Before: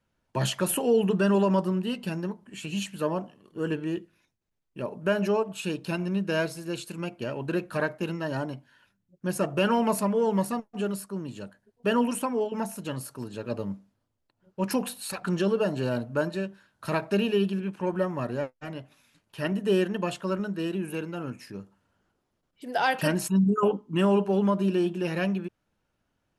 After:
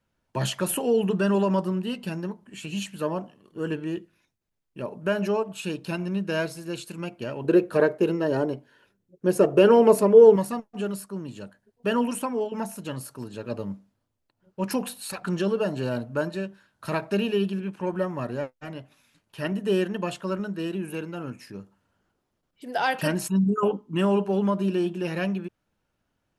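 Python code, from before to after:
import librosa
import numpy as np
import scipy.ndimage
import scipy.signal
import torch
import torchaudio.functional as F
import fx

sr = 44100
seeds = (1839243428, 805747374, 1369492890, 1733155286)

y = fx.peak_eq(x, sr, hz=420.0, db=15.0, octaves=0.86, at=(7.44, 10.36))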